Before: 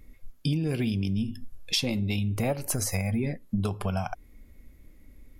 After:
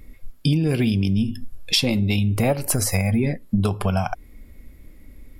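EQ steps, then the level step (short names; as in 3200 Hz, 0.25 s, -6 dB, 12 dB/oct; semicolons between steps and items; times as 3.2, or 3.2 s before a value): notch 6300 Hz, Q 8.7; +7.5 dB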